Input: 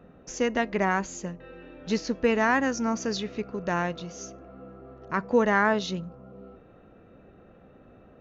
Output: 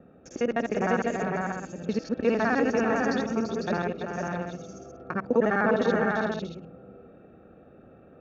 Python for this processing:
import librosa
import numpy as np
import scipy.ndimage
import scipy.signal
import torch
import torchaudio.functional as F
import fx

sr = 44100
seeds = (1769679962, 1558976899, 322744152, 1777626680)

y = fx.local_reverse(x, sr, ms=51.0)
y = fx.high_shelf(y, sr, hz=2800.0, db=-9.5)
y = fx.notch_comb(y, sr, f0_hz=1000.0)
y = fx.echo_multitap(y, sr, ms=(337, 501, 631), db=(-6.5, -3.5, -9.0))